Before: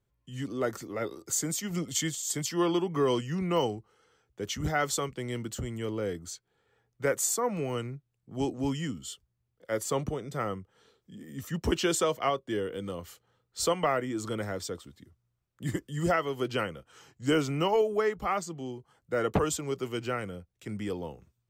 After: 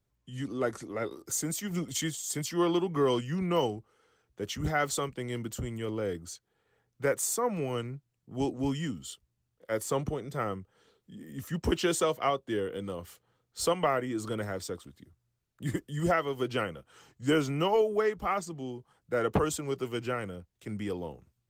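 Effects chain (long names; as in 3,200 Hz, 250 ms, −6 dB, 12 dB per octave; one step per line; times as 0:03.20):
Opus 24 kbit/s 48,000 Hz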